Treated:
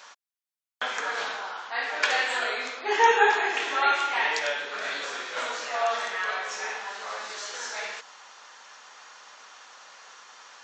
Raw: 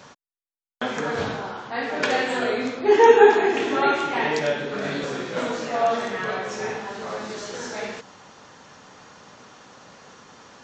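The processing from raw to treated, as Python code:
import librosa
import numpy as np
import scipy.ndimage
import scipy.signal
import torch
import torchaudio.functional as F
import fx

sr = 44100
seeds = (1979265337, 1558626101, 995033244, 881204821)

y = scipy.signal.sosfilt(scipy.signal.butter(2, 990.0, 'highpass', fs=sr, output='sos'), x)
y = y * librosa.db_to_amplitude(1.5)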